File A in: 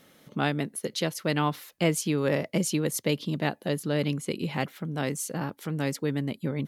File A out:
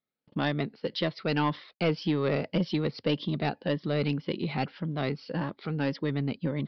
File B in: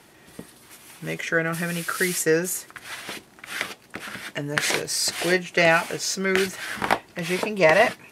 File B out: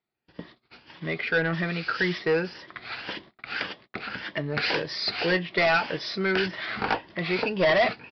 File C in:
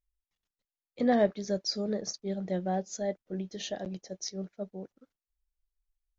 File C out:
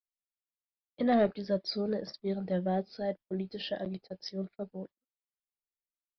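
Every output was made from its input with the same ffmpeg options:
-af "afftfilt=real='re*pow(10,7/40*sin(2*PI*(1.2*log(max(b,1)*sr/1024/100)/log(2)-(1.8)*(pts-256)/sr)))':imag='im*pow(10,7/40*sin(2*PI*(1.2*log(max(b,1)*sr/1024/100)/log(2)-(1.8)*(pts-256)/sr)))':win_size=1024:overlap=0.75,agate=range=-35dB:threshold=-46dB:ratio=16:detection=peak,aresample=11025,asoftclip=type=tanh:threshold=-17dB,aresample=44100"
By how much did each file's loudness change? −1.5, −3.5, −1.0 LU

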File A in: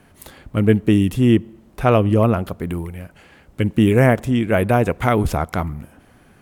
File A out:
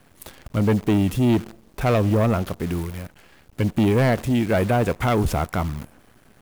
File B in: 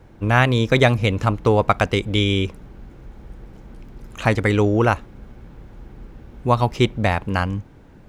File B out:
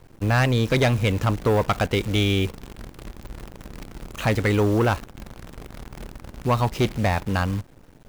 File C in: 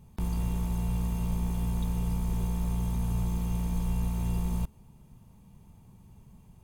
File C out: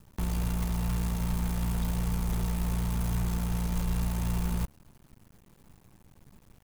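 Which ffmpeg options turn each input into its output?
-af "acrusher=bits=7:dc=4:mix=0:aa=0.000001,asoftclip=type=tanh:threshold=-13.5dB"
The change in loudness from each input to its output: −3.5, −3.0, 0.0 LU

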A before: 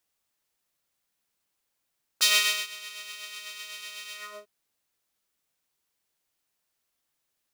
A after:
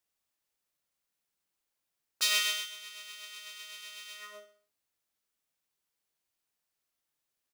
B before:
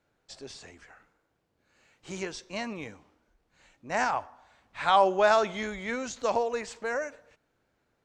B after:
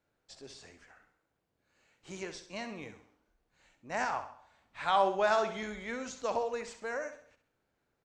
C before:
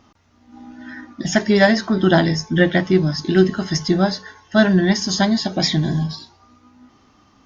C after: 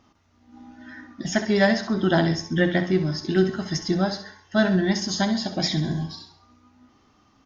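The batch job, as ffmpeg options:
-af "aecho=1:1:66|132|198|264:0.299|0.125|0.0527|0.0221,volume=-6dB"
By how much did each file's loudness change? −7.0, −5.5, −5.5 LU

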